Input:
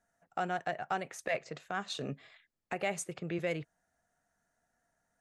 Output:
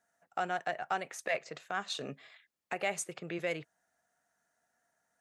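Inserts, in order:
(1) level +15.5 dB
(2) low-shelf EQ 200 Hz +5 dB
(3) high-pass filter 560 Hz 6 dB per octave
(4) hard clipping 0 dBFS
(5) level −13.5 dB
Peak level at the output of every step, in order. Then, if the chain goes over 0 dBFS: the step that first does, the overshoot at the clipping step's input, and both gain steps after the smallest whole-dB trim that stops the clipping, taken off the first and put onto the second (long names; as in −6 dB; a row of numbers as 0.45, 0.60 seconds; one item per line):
−4.0, −4.0, −5.5, −5.5, −19.0 dBFS
no step passes full scale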